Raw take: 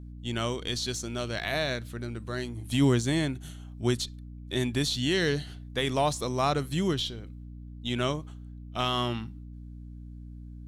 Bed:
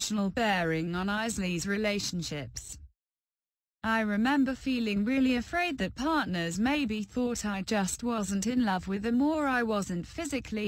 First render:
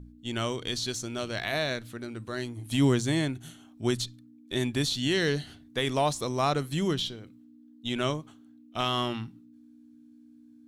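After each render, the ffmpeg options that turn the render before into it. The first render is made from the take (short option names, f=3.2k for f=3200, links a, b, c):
-af "bandreject=f=60:t=h:w=4,bandreject=f=120:t=h:w=4,bandreject=f=180:t=h:w=4"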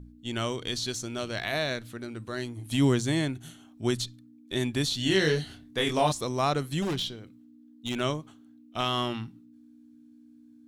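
-filter_complex "[0:a]asettb=1/sr,asplit=3[a][b][c];[a]atrim=end=4.974[d];[b]atrim=start=4.97:end=6.12,asetpts=PTS-STARTPTS,afade=t=in:d=0.004:c=qsin,afade=t=out:st=1.146:d=0.004:c=qsin,asplit=2[e][f];[f]adelay=26,volume=-3dB[g];[e][g]amix=inputs=2:normalize=0,atrim=end_sample=50715[h];[c]atrim=start=6.116[i];[d][h]acrossfade=d=0.004:c1=hsin:c2=qsin[j];[j][i]acrossfade=d=0.004:c1=qsin:c2=hsin,asettb=1/sr,asplit=3[k][l][m];[k]atrim=end=6.824[n];[l]atrim=start=6.82:end=8,asetpts=PTS-STARTPTS,afade=t=in:d=0.004:c=qsin,afade=t=out:st=1.176:d=0.004:c=qsin,aeval=exprs='0.0631*(abs(mod(val(0)/0.0631+3,4)-2)-1)':c=same[o];[m]atrim=start=7.996[p];[n][o]acrossfade=d=0.004:c1=hsin:c2=qsin[q];[q][p]acrossfade=d=0.004:c1=qsin:c2=hsin"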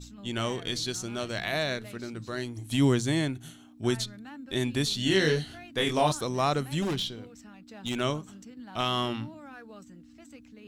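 -filter_complex "[1:a]volume=-18.5dB[a];[0:a][a]amix=inputs=2:normalize=0"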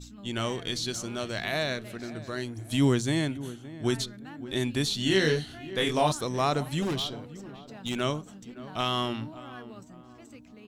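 -filter_complex "[0:a]asplit=2[a][b];[b]adelay=568,lowpass=f=1.3k:p=1,volume=-15dB,asplit=2[c][d];[d]adelay=568,lowpass=f=1.3k:p=1,volume=0.44,asplit=2[e][f];[f]adelay=568,lowpass=f=1.3k:p=1,volume=0.44,asplit=2[g][h];[h]adelay=568,lowpass=f=1.3k:p=1,volume=0.44[i];[a][c][e][g][i]amix=inputs=5:normalize=0"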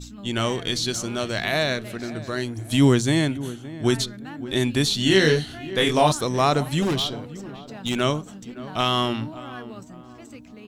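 -af "volume=6.5dB"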